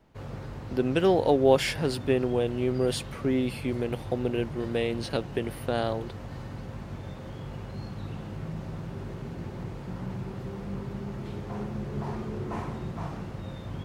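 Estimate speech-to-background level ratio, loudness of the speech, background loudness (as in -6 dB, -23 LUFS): 10.5 dB, -27.5 LUFS, -38.0 LUFS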